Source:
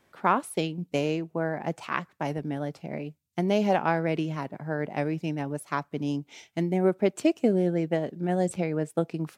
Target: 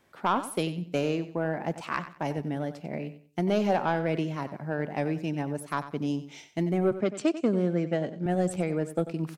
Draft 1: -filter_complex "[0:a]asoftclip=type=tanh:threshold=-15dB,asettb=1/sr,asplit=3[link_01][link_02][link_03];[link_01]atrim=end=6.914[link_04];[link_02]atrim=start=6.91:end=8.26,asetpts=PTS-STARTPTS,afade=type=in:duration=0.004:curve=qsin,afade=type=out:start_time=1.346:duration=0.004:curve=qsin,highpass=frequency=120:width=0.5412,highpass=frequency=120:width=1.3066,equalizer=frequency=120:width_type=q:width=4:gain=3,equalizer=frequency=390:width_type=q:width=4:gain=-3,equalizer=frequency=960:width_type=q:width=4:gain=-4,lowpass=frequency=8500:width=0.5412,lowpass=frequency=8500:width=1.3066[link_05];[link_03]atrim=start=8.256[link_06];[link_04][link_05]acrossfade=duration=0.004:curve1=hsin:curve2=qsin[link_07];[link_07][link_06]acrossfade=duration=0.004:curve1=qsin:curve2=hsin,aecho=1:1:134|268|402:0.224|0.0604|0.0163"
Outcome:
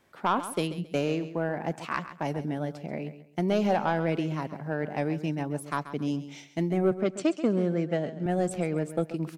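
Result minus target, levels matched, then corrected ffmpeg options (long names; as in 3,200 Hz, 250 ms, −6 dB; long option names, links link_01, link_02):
echo 41 ms late
-filter_complex "[0:a]asoftclip=type=tanh:threshold=-15dB,asettb=1/sr,asplit=3[link_01][link_02][link_03];[link_01]atrim=end=6.914[link_04];[link_02]atrim=start=6.91:end=8.26,asetpts=PTS-STARTPTS,afade=type=in:duration=0.004:curve=qsin,afade=type=out:start_time=1.346:duration=0.004:curve=qsin,highpass=frequency=120:width=0.5412,highpass=frequency=120:width=1.3066,equalizer=frequency=120:width_type=q:width=4:gain=3,equalizer=frequency=390:width_type=q:width=4:gain=-3,equalizer=frequency=960:width_type=q:width=4:gain=-4,lowpass=frequency=8500:width=0.5412,lowpass=frequency=8500:width=1.3066[link_05];[link_03]atrim=start=8.256[link_06];[link_04][link_05]acrossfade=duration=0.004:curve1=hsin:curve2=qsin[link_07];[link_07][link_06]acrossfade=duration=0.004:curve1=qsin:curve2=hsin,aecho=1:1:93|186|279:0.224|0.0604|0.0163"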